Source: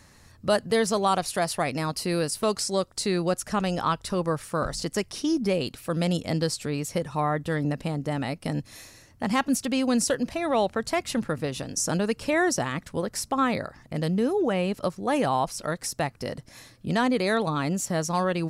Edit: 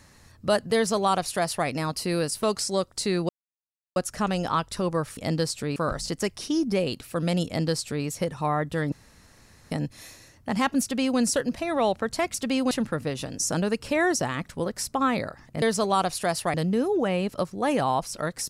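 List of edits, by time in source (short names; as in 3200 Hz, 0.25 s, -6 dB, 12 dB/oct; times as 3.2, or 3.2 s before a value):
0.75–1.67 copy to 13.99
3.29 insert silence 0.67 s
6.2–6.79 copy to 4.5
7.66–8.45 room tone
9.56–9.93 copy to 11.08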